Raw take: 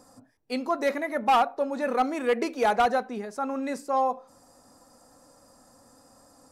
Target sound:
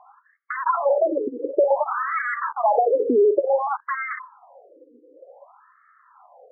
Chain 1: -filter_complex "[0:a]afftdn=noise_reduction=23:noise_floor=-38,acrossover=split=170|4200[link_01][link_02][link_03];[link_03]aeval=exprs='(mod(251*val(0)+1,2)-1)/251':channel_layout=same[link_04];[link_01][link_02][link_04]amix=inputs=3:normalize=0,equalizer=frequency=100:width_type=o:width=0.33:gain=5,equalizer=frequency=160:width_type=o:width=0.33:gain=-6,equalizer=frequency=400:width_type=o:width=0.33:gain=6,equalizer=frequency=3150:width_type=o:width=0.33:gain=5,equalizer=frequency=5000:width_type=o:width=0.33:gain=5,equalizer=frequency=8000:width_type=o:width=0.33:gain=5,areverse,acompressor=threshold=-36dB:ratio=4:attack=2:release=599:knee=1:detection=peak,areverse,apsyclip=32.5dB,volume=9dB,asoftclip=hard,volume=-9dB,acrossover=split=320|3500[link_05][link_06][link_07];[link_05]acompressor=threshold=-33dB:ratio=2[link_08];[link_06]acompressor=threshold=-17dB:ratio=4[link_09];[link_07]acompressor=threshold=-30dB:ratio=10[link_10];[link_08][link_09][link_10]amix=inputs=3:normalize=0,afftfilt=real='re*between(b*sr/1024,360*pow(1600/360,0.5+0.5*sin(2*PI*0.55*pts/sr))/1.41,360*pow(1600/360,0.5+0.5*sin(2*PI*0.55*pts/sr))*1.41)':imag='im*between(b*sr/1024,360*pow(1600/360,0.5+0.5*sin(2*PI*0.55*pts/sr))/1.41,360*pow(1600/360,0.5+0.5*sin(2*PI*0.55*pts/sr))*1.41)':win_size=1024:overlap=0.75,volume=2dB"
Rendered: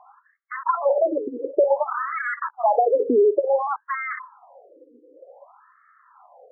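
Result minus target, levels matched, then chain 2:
downward compressor: peak gain reduction +7 dB
-filter_complex "[0:a]afftdn=noise_reduction=23:noise_floor=-38,acrossover=split=170|4200[link_01][link_02][link_03];[link_03]aeval=exprs='(mod(251*val(0)+1,2)-1)/251':channel_layout=same[link_04];[link_01][link_02][link_04]amix=inputs=3:normalize=0,equalizer=frequency=100:width_type=o:width=0.33:gain=5,equalizer=frequency=160:width_type=o:width=0.33:gain=-6,equalizer=frequency=400:width_type=o:width=0.33:gain=6,equalizer=frequency=3150:width_type=o:width=0.33:gain=5,equalizer=frequency=5000:width_type=o:width=0.33:gain=5,equalizer=frequency=8000:width_type=o:width=0.33:gain=5,areverse,acompressor=threshold=-26.5dB:ratio=4:attack=2:release=599:knee=1:detection=peak,areverse,apsyclip=32.5dB,volume=9dB,asoftclip=hard,volume=-9dB,acrossover=split=320|3500[link_05][link_06][link_07];[link_05]acompressor=threshold=-33dB:ratio=2[link_08];[link_06]acompressor=threshold=-17dB:ratio=4[link_09];[link_07]acompressor=threshold=-30dB:ratio=10[link_10];[link_08][link_09][link_10]amix=inputs=3:normalize=0,afftfilt=real='re*between(b*sr/1024,360*pow(1600/360,0.5+0.5*sin(2*PI*0.55*pts/sr))/1.41,360*pow(1600/360,0.5+0.5*sin(2*PI*0.55*pts/sr))*1.41)':imag='im*between(b*sr/1024,360*pow(1600/360,0.5+0.5*sin(2*PI*0.55*pts/sr))/1.41,360*pow(1600/360,0.5+0.5*sin(2*PI*0.55*pts/sr))*1.41)':win_size=1024:overlap=0.75,volume=2dB"

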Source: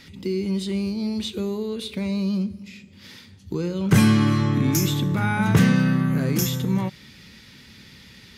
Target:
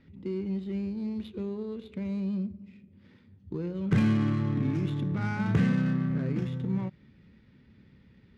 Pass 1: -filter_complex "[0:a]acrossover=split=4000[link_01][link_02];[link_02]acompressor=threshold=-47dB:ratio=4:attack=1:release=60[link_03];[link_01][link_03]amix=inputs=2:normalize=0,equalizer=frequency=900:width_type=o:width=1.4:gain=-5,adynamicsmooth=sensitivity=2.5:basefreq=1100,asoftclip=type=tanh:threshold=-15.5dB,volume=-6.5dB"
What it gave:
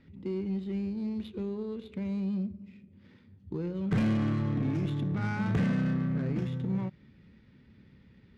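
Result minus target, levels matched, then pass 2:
soft clipping: distortion +13 dB
-filter_complex "[0:a]acrossover=split=4000[link_01][link_02];[link_02]acompressor=threshold=-47dB:ratio=4:attack=1:release=60[link_03];[link_01][link_03]amix=inputs=2:normalize=0,equalizer=frequency=900:width_type=o:width=1.4:gain=-5,adynamicsmooth=sensitivity=2.5:basefreq=1100,asoftclip=type=tanh:threshold=-6.5dB,volume=-6.5dB"

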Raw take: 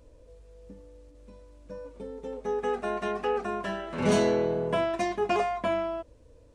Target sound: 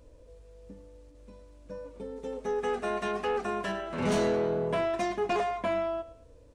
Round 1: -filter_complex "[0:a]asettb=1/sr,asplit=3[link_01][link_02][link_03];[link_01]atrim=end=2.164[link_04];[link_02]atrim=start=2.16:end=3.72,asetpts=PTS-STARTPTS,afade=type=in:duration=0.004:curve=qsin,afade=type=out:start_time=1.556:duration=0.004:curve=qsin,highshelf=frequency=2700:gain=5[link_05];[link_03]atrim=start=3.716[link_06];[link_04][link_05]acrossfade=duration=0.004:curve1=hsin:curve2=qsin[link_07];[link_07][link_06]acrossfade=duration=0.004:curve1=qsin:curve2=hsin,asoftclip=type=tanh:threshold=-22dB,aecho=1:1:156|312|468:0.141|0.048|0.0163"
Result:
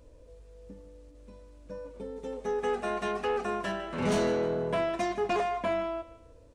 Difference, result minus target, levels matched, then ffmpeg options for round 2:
echo 46 ms late
-filter_complex "[0:a]asettb=1/sr,asplit=3[link_01][link_02][link_03];[link_01]atrim=end=2.164[link_04];[link_02]atrim=start=2.16:end=3.72,asetpts=PTS-STARTPTS,afade=type=in:duration=0.004:curve=qsin,afade=type=out:start_time=1.556:duration=0.004:curve=qsin,highshelf=frequency=2700:gain=5[link_05];[link_03]atrim=start=3.716[link_06];[link_04][link_05]acrossfade=duration=0.004:curve1=hsin:curve2=qsin[link_07];[link_07][link_06]acrossfade=duration=0.004:curve1=qsin:curve2=hsin,asoftclip=type=tanh:threshold=-22dB,aecho=1:1:110|220|330:0.141|0.048|0.0163"

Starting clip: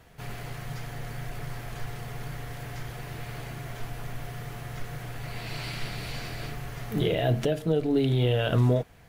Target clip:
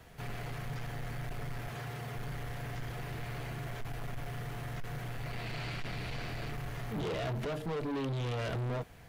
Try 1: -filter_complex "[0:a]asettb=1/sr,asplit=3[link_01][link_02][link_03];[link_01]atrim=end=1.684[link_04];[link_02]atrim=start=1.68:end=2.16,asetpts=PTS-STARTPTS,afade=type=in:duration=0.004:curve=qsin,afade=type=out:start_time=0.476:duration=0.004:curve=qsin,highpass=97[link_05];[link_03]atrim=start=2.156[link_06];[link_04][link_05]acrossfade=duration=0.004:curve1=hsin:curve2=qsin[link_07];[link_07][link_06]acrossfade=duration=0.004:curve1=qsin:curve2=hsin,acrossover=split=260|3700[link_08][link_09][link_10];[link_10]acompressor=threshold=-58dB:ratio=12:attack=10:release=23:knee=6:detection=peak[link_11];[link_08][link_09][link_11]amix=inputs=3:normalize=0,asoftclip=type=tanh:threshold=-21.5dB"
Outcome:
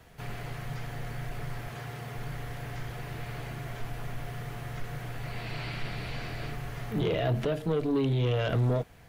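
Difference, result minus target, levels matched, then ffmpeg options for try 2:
soft clipping: distortion −9 dB
-filter_complex "[0:a]asettb=1/sr,asplit=3[link_01][link_02][link_03];[link_01]atrim=end=1.684[link_04];[link_02]atrim=start=1.68:end=2.16,asetpts=PTS-STARTPTS,afade=type=in:duration=0.004:curve=qsin,afade=type=out:start_time=0.476:duration=0.004:curve=qsin,highpass=97[link_05];[link_03]atrim=start=2.156[link_06];[link_04][link_05]acrossfade=duration=0.004:curve1=hsin:curve2=qsin[link_07];[link_07][link_06]acrossfade=duration=0.004:curve1=qsin:curve2=hsin,acrossover=split=260|3700[link_08][link_09][link_10];[link_10]acompressor=threshold=-58dB:ratio=12:attack=10:release=23:knee=6:detection=peak[link_11];[link_08][link_09][link_11]amix=inputs=3:normalize=0,asoftclip=type=tanh:threshold=-33dB"

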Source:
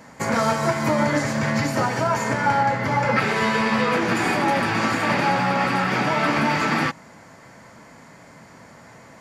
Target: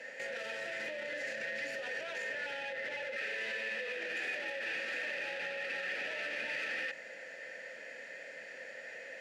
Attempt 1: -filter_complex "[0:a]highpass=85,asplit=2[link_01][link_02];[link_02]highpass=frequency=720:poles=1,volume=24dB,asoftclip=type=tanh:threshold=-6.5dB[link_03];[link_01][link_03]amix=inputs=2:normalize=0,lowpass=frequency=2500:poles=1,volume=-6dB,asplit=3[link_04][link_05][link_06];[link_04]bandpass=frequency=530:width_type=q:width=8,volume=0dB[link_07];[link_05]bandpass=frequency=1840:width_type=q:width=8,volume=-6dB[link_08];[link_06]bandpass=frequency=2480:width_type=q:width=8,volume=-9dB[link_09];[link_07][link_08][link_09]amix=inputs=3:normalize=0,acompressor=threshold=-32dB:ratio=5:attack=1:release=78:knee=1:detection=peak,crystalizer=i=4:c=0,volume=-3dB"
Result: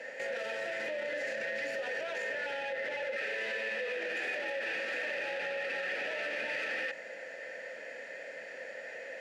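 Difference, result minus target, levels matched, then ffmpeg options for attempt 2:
500 Hz band +3.5 dB
-filter_complex "[0:a]highpass=85,asplit=2[link_01][link_02];[link_02]highpass=frequency=720:poles=1,volume=24dB,asoftclip=type=tanh:threshold=-6.5dB[link_03];[link_01][link_03]amix=inputs=2:normalize=0,lowpass=frequency=2500:poles=1,volume=-6dB,asplit=3[link_04][link_05][link_06];[link_04]bandpass=frequency=530:width_type=q:width=8,volume=0dB[link_07];[link_05]bandpass=frequency=1840:width_type=q:width=8,volume=-6dB[link_08];[link_06]bandpass=frequency=2480:width_type=q:width=8,volume=-9dB[link_09];[link_07][link_08][link_09]amix=inputs=3:normalize=0,acompressor=threshold=-32dB:ratio=5:attack=1:release=78:knee=1:detection=peak,equalizer=frequency=600:width=0.56:gain=-6,crystalizer=i=4:c=0,volume=-3dB"

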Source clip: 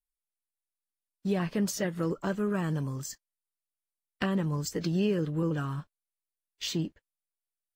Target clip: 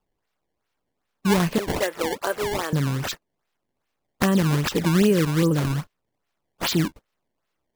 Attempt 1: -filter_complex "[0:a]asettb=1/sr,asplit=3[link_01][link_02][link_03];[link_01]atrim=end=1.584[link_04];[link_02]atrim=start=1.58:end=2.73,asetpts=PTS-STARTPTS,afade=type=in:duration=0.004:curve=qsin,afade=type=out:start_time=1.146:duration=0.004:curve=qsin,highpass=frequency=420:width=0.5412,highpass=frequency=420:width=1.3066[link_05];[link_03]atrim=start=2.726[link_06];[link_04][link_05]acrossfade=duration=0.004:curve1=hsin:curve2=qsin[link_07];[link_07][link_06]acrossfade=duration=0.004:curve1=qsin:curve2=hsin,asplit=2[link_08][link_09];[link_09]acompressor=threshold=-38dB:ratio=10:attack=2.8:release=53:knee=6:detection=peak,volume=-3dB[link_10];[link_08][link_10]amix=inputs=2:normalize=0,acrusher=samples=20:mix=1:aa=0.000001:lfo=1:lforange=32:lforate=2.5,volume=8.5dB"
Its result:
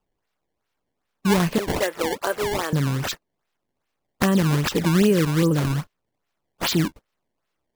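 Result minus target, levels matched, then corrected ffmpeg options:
downward compressor: peak gain reduction −7 dB
-filter_complex "[0:a]asettb=1/sr,asplit=3[link_01][link_02][link_03];[link_01]atrim=end=1.584[link_04];[link_02]atrim=start=1.58:end=2.73,asetpts=PTS-STARTPTS,afade=type=in:duration=0.004:curve=qsin,afade=type=out:start_time=1.146:duration=0.004:curve=qsin,highpass=frequency=420:width=0.5412,highpass=frequency=420:width=1.3066[link_05];[link_03]atrim=start=2.726[link_06];[link_04][link_05]acrossfade=duration=0.004:curve1=hsin:curve2=qsin[link_07];[link_07][link_06]acrossfade=duration=0.004:curve1=qsin:curve2=hsin,asplit=2[link_08][link_09];[link_09]acompressor=threshold=-45.5dB:ratio=10:attack=2.8:release=53:knee=6:detection=peak,volume=-3dB[link_10];[link_08][link_10]amix=inputs=2:normalize=0,acrusher=samples=20:mix=1:aa=0.000001:lfo=1:lforange=32:lforate=2.5,volume=8.5dB"

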